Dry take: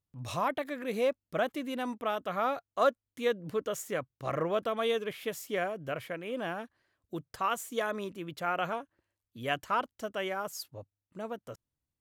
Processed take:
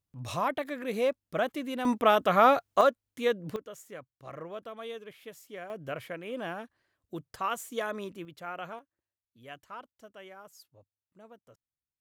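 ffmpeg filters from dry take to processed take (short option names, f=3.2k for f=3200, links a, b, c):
-af "asetnsamples=n=441:p=0,asendcmd='1.85 volume volume 10dB;2.81 volume volume 2dB;3.56 volume volume -10.5dB;5.7 volume volume -1dB;8.25 volume volume -7.5dB;8.79 volume volume -14dB',volume=1dB"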